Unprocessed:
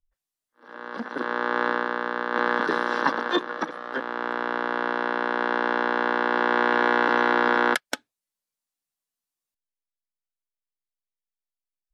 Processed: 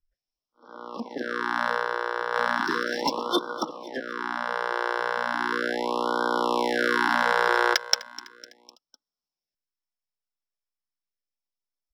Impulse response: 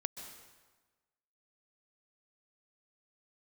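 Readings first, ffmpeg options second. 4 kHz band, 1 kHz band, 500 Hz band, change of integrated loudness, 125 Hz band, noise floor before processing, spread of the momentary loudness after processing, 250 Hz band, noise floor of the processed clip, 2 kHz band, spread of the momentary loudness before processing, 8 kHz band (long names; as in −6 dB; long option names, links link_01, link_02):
+4.5 dB, −2.0 dB, −1.5 dB, −1.5 dB, can't be measured, below −85 dBFS, 12 LU, −3.0 dB, below −85 dBFS, −2.0 dB, 11 LU, +8.0 dB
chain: -filter_complex "[0:a]lowpass=frequency=5400:width_type=q:width=14,acrossover=split=1500[link_01][link_02];[link_02]adynamicsmooth=sensitivity=2:basefreq=2900[link_03];[link_01][link_03]amix=inputs=2:normalize=0,aecho=1:1:252|504|756|1008:0.119|0.063|0.0334|0.0177,afftfilt=real='re*(1-between(b*sr/1024,230*pow(2200/230,0.5+0.5*sin(2*PI*0.36*pts/sr))/1.41,230*pow(2200/230,0.5+0.5*sin(2*PI*0.36*pts/sr))*1.41))':imag='im*(1-between(b*sr/1024,230*pow(2200/230,0.5+0.5*sin(2*PI*0.36*pts/sr))/1.41,230*pow(2200/230,0.5+0.5*sin(2*PI*0.36*pts/sr))*1.41))':win_size=1024:overlap=0.75,volume=-1dB"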